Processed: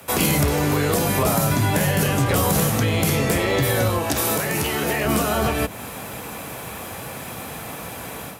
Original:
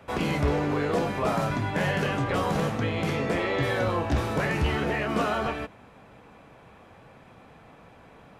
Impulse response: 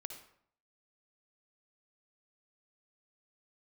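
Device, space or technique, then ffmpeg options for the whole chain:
FM broadcast chain: -filter_complex "[0:a]highpass=frequency=51:width=0.5412,highpass=frequency=51:width=1.3066,dynaudnorm=framelen=180:gausssize=3:maxgain=11dB,acrossover=split=140|820[link_01][link_02][link_03];[link_01]acompressor=threshold=-23dB:ratio=4[link_04];[link_02]acompressor=threshold=-25dB:ratio=4[link_05];[link_03]acompressor=threshold=-33dB:ratio=4[link_06];[link_04][link_05][link_06]amix=inputs=3:normalize=0,aemphasis=mode=production:type=50fm,alimiter=limit=-15.5dB:level=0:latency=1:release=442,asoftclip=type=hard:threshold=-18.5dB,lowpass=frequency=15000:width=0.5412,lowpass=frequency=15000:width=1.3066,aemphasis=mode=production:type=50fm,asettb=1/sr,asplit=3[link_07][link_08][link_09];[link_07]atrim=end=3.984[link_10];[link_08]atrim=start=3.98:end=5.05,asetpts=PTS-STARTPTS,afade=type=in:duration=0.004:curve=qsin,afade=type=out:start_time=1.066:duration=0.004:curve=qsin,highpass=frequency=270:poles=1[link_11];[link_09]atrim=start=5.046[link_12];[link_10][link_11]acrossfade=duration=0.004:curve1=hsin:curve2=qsin[link_13];[link_13][link_12]acrossfade=duration=0.004:curve1=qsin:curve2=hsin,volume=6dB"

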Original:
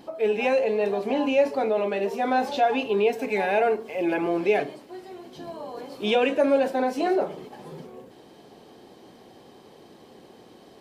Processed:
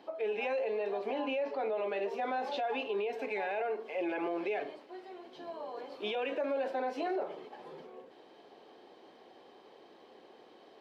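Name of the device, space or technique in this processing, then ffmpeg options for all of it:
DJ mixer with the lows and highs turned down: -filter_complex "[0:a]asettb=1/sr,asplit=3[link_01][link_02][link_03];[link_01]atrim=end=1.194[link_04];[link_02]atrim=start=1.19:end=1.77,asetpts=PTS-STARTPTS,afade=type=in:duration=0.004:curve=qsin,afade=type=out:start_time=0.576:duration=0.004:curve=qsin,lowpass=5100[link_05];[link_03]atrim=start=1.766[link_06];[link_04][link_05]acrossfade=duration=0.004:curve1=hsin:curve2=qsin[link_07];[link_07][link_06]acrossfade=duration=0.004:curve1=qsin:curve2=hsin,acrossover=split=310 4600:gain=0.126 1 0.126[link_08][link_09][link_10];[link_08][link_09][link_10]amix=inputs=3:normalize=0,alimiter=limit=-22dB:level=0:latency=1:release=74,volume=-4.5dB"

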